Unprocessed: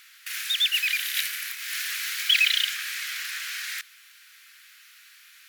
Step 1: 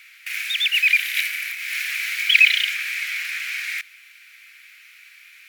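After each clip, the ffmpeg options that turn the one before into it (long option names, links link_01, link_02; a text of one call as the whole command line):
ffmpeg -i in.wav -af "equalizer=frequency=2300:width=2.6:gain=14.5,volume=-2.5dB" out.wav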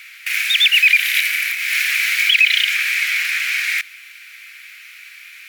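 ffmpeg -i in.wav -af "alimiter=limit=-12dB:level=0:latency=1:release=110,volume=8dB" out.wav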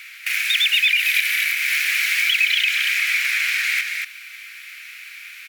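ffmpeg -i in.wav -af "acompressor=threshold=-20dB:ratio=2,aecho=1:1:235:0.596" out.wav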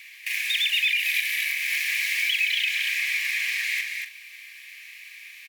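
ffmpeg -i in.wav -filter_complex "[0:a]asuperstop=centerf=1400:order=8:qfactor=3.5,asplit=2[link_01][link_02];[link_02]adelay=42,volume=-10dB[link_03];[link_01][link_03]amix=inputs=2:normalize=0,volume=-6dB" out.wav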